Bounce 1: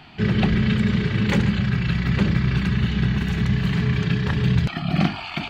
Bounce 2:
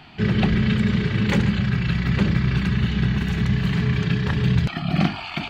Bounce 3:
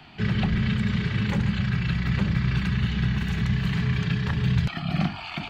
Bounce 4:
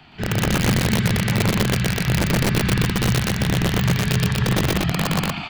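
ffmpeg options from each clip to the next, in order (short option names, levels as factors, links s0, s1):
-af anull
-filter_complex "[0:a]acrossover=split=220|630|1100[s0][s1][s2][s3];[s1]acompressor=threshold=0.0126:ratio=6[s4];[s3]alimiter=limit=0.0944:level=0:latency=1:release=253[s5];[s0][s4][s2][s5]amix=inputs=4:normalize=0,volume=0.75"
-filter_complex "[0:a]aeval=exprs='(mod(6.31*val(0)+1,2)-1)/6.31':c=same,asplit=2[s0][s1];[s1]aecho=0:1:119.5|242:1|1[s2];[s0][s2]amix=inputs=2:normalize=0"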